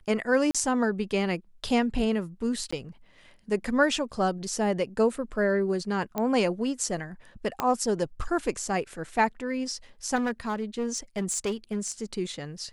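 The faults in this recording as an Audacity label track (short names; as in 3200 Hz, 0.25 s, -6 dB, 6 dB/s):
0.510000	0.550000	gap 36 ms
2.710000	2.730000	gap 15 ms
6.180000	6.180000	pop -15 dBFS
7.600000	7.600000	pop -12 dBFS
10.150000	12.030000	clipped -24 dBFS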